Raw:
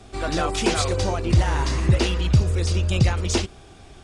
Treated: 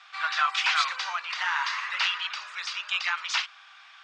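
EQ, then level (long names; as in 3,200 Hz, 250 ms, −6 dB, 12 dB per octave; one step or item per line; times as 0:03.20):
Butterworth high-pass 1,100 Hz 36 dB per octave
Bessel low-pass filter 8,300 Hz
high-frequency loss of the air 210 metres
+7.5 dB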